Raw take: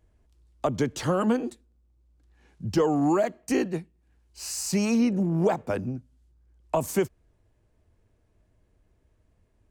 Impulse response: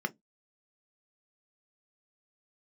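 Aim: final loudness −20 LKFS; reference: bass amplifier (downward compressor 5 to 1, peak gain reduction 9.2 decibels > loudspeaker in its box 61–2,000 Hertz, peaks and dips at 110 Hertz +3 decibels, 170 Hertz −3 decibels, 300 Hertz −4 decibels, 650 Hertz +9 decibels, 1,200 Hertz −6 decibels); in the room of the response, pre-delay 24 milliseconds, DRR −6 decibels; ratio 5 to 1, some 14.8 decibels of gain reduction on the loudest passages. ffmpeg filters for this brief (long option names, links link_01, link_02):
-filter_complex "[0:a]acompressor=threshold=-36dB:ratio=5,asplit=2[link_01][link_02];[1:a]atrim=start_sample=2205,adelay=24[link_03];[link_02][link_03]afir=irnorm=-1:irlink=0,volume=1dB[link_04];[link_01][link_04]amix=inputs=2:normalize=0,acompressor=threshold=-31dB:ratio=5,highpass=frequency=61:width=0.5412,highpass=frequency=61:width=1.3066,equalizer=frequency=110:width_type=q:width=4:gain=3,equalizer=frequency=170:width_type=q:width=4:gain=-3,equalizer=frequency=300:width_type=q:width=4:gain=-4,equalizer=frequency=650:width_type=q:width=4:gain=9,equalizer=frequency=1200:width_type=q:width=4:gain=-6,lowpass=frequency=2000:width=0.5412,lowpass=frequency=2000:width=1.3066,volume=16dB"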